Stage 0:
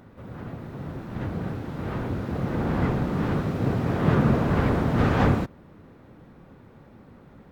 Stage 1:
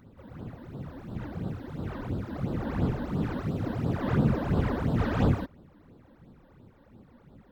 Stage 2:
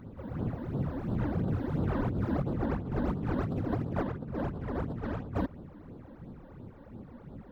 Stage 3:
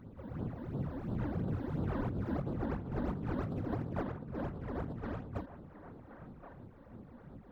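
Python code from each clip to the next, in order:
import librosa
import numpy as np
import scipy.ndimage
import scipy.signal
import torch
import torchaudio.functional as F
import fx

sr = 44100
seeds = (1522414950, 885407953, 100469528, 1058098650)

y1 = fx.phaser_stages(x, sr, stages=12, low_hz=120.0, high_hz=2200.0, hz=2.9, feedback_pct=25)
y1 = y1 * librosa.db_to_amplitude(-3.5)
y2 = fx.high_shelf(y1, sr, hz=2000.0, db=-10.5)
y2 = fx.over_compress(y2, sr, threshold_db=-35.0, ratio=-1.0)
y2 = y2 * librosa.db_to_amplitude(2.5)
y3 = fx.echo_wet_bandpass(y2, sr, ms=1073, feedback_pct=31, hz=1100.0, wet_db=-10.0)
y3 = fx.end_taper(y3, sr, db_per_s=150.0)
y3 = y3 * librosa.db_to_amplitude(-5.0)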